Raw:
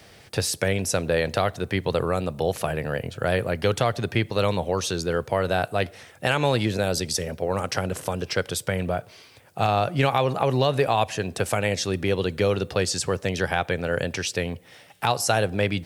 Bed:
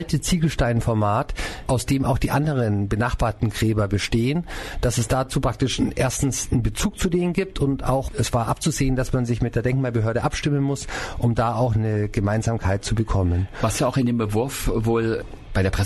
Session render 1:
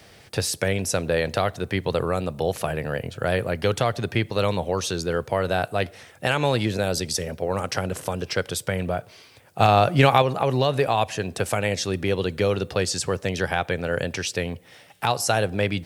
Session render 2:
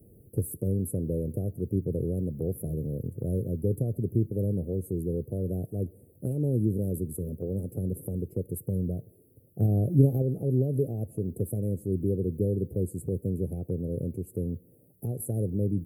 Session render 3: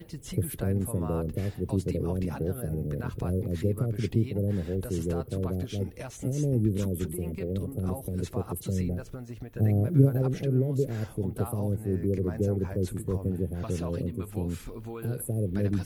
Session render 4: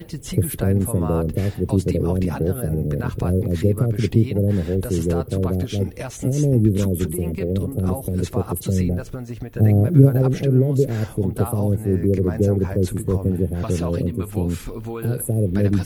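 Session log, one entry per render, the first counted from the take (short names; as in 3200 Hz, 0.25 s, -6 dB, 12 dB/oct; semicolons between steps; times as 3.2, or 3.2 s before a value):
9.6–10.22 gain +5 dB
inverse Chebyshev band-stop 960–6000 Hz, stop band 50 dB; dynamic EQ 690 Hz, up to -4 dB, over -40 dBFS, Q 0.8
add bed -18.5 dB
gain +9 dB; limiter -1 dBFS, peak gain reduction 1.5 dB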